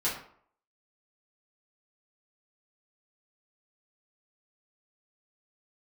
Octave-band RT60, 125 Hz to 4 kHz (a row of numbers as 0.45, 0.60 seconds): 0.50, 0.55, 0.60, 0.60, 0.45, 0.35 seconds